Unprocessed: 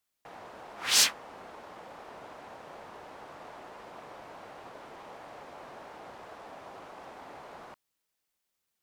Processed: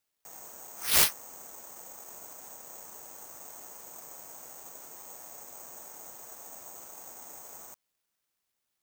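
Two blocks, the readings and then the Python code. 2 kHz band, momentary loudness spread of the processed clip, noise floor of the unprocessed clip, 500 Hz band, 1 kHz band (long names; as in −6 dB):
−2.0 dB, 19 LU, −83 dBFS, −3.5 dB, −3.5 dB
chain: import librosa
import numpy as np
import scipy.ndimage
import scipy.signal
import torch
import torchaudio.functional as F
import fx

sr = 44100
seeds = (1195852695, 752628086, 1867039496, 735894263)

y = (np.kron(x[::6], np.eye(6)[0]) * 6)[:len(x)]
y = y * librosa.db_to_amplitude(-7.5)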